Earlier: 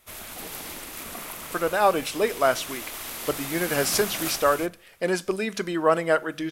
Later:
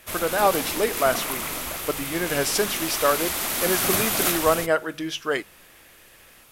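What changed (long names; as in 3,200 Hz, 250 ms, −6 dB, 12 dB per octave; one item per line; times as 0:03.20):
speech: entry −1.40 s
background +8.0 dB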